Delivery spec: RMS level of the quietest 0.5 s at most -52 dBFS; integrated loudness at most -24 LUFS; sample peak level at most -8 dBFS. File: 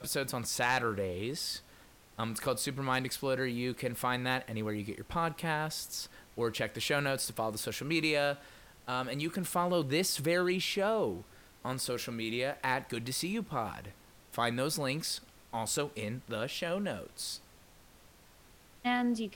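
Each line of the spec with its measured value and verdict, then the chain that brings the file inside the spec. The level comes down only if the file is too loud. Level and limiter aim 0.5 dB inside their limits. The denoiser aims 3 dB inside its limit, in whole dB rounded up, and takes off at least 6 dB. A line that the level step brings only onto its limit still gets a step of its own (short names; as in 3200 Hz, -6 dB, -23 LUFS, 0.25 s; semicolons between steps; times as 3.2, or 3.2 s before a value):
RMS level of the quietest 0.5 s -59 dBFS: OK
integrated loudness -34.0 LUFS: OK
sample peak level -16.0 dBFS: OK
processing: none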